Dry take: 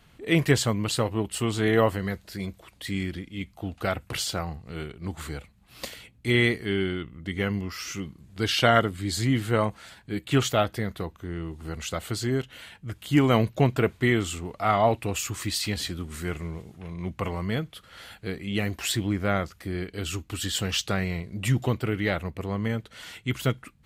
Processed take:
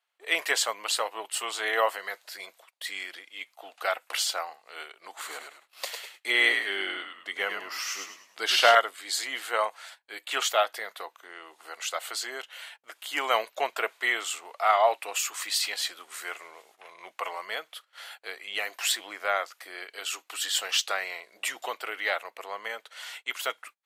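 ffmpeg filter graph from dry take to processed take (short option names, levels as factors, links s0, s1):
-filter_complex "[0:a]asettb=1/sr,asplit=3[s0][s1][s2];[s0]atrim=end=5.174[s3];[s1]atrim=start=5.17:end=8.75,asetpts=PTS-STARTPTS,afade=t=in:d=0.004:c=qsin,afade=t=out:st=3.576:d=0.004:c=qsin,highpass=130,lowshelf=f=330:g=10.5,asplit=5[s4][s5][s6][s7][s8];[s5]adelay=103,afreqshift=-67,volume=0.562[s9];[s6]adelay=206,afreqshift=-134,volume=0.202[s10];[s7]adelay=309,afreqshift=-201,volume=0.0733[s11];[s8]adelay=412,afreqshift=-268,volume=0.0263[s12];[s4][s9][s10][s11][s12]amix=inputs=5:normalize=0,atrim=end_sample=157878[s13];[s2]atrim=start=8.746[s14];[s3][s13]acrossfade=d=0.004:c1=hsin:c2=qsin[s15];[s15][s14]acrossfade=d=0.004:c1=qsin:c2=hsin,agate=range=0.0794:threshold=0.00501:ratio=16:detection=peak,highpass=f=630:w=0.5412,highpass=f=630:w=1.3066,volume=1.26"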